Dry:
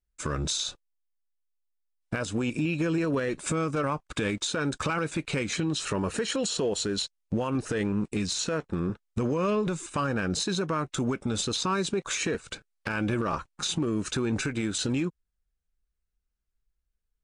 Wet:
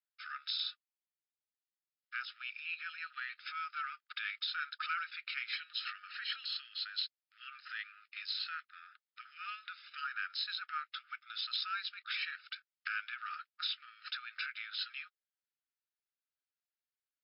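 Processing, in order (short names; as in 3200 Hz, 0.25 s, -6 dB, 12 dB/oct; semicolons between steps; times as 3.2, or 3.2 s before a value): brick-wall FIR band-pass 1200–5300 Hz; gain -4.5 dB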